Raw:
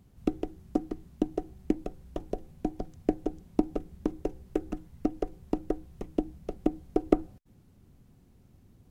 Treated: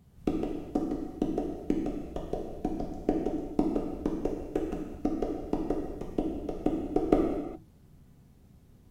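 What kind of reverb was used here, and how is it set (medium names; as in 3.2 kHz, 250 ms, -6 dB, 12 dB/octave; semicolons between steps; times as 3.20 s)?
gated-style reverb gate 440 ms falling, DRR -1.5 dB; trim -1.5 dB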